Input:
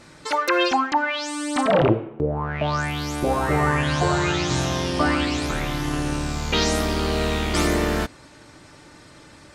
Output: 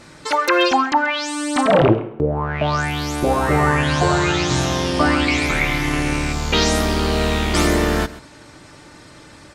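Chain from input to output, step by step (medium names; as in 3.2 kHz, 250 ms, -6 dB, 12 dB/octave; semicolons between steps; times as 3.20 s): 5.28–6.33 s: peaking EQ 2.2 kHz +14 dB 0.35 oct; delay 133 ms -17.5 dB; trim +4 dB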